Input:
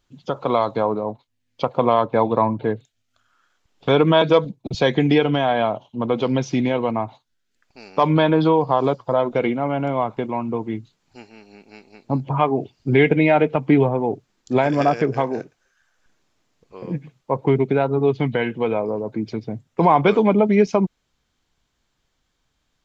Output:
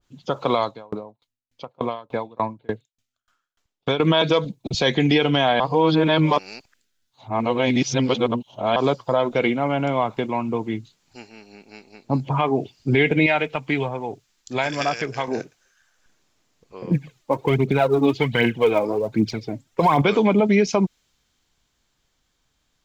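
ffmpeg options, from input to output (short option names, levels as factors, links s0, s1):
-filter_complex "[0:a]asettb=1/sr,asplit=3[s0][s1][s2];[s0]atrim=end=0.634[s3];[s1]atrim=start=0.63:end=4,asetpts=PTS-STARTPTS,afade=t=in:d=0.004:c=qsin,afade=t=out:st=3.366:d=0.004:c=qsin,aeval=exprs='val(0)*pow(10,-33*if(lt(mod(3.4*n/s,1),2*abs(3.4)/1000),1-mod(3.4*n/s,1)/(2*abs(3.4)/1000),(mod(3.4*n/s,1)-2*abs(3.4)/1000)/(1-2*abs(3.4)/1000))/20)':c=same[s4];[s2]atrim=start=3.996[s5];[s3][s4]acrossfade=d=0.004:c1=hsin:c2=qsin[s6];[s6][s5]acrossfade=d=0.004:c1=qsin:c2=hsin,asettb=1/sr,asplit=3[s7][s8][s9];[s7]atrim=end=13.264[s10];[s8]atrim=start=13.26:end=15.28,asetpts=PTS-STARTPTS,afade=t=in:d=0.004:c=qsin,afade=t=out:st=2.016:d=0.004:c=qsin,equalizer=f=260:w=0.34:g=-10[s11];[s9]atrim=start=15.276[s12];[s10][s11]acrossfade=d=0.004:c1=hsin:c2=qsin[s13];[s13][s12]acrossfade=d=0.004:c1=qsin:c2=hsin,asettb=1/sr,asplit=3[s14][s15][s16];[s14]atrim=end=16.914[s17];[s15]atrim=start=16.91:end=20.02,asetpts=PTS-STARTPTS,afade=t=in:d=0.004:c=qsin,afade=t=out:st=3.106:d=0.004:c=qsin,aphaser=in_gain=1:out_gain=1:delay=3.8:decay=0.6:speed=1.3:type=triangular[s18];[s16]atrim=start=20.016[s19];[s17][s18]acrossfade=d=0.004:c1=hsin:c2=qsin[s20];[s20][s19]acrossfade=d=0.004:c1=qsin:c2=hsin,asplit=3[s21][s22][s23];[s21]atrim=end=5.602[s24];[s22]atrim=start=5.598:end=8.762,asetpts=PTS-STARTPTS,areverse[s25];[s23]atrim=start=8.758[s26];[s24][s25]acrossfade=d=0.004:c1=hsin:c2=hsin[s27];[s27][s26]acrossfade=d=0.004:c1=hsin:c2=hsin,highshelf=f=4600:g=5.5,alimiter=limit=0.355:level=0:latency=1:release=47,adynamicequalizer=threshold=0.0141:dfrequency=1800:dqfactor=0.7:tfrequency=1800:tqfactor=0.7:attack=5:release=100:ratio=0.375:range=3:mode=boostabove:tftype=highshelf"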